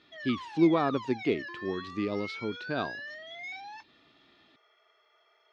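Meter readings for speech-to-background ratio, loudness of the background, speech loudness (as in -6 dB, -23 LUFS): 10.0 dB, -41.0 LUFS, -31.0 LUFS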